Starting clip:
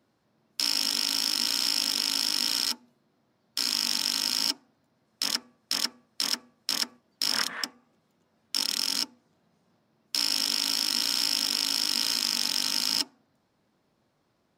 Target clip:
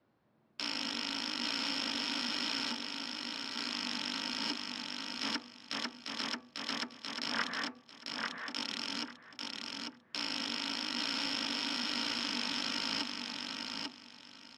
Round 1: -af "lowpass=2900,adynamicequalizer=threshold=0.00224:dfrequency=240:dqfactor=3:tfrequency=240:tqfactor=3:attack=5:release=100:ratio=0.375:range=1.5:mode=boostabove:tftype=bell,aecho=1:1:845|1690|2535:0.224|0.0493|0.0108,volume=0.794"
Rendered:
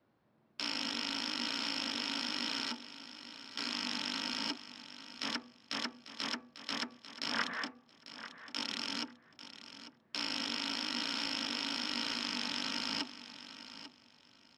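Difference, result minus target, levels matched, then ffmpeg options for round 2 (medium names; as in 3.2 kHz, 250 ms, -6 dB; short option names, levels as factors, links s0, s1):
echo-to-direct -9.5 dB
-af "lowpass=2900,adynamicequalizer=threshold=0.00224:dfrequency=240:dqfactor=3:tfrequency=240:tqfactor=3:attack=5:release=100:ratio=0.375:range=1.5:mode=boostabove:tftype=bell,aecho=1:1:845|1690|2535:0.668|0.147|0.0323,volume=0.794"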